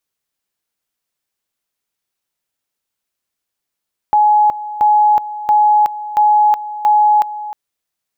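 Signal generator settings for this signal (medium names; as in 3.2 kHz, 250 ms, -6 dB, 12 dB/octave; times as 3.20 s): two-level tone 842 Hz -7.5 dBFS, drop 15 dB, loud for 0.37 s, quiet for 0.31 s, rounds 5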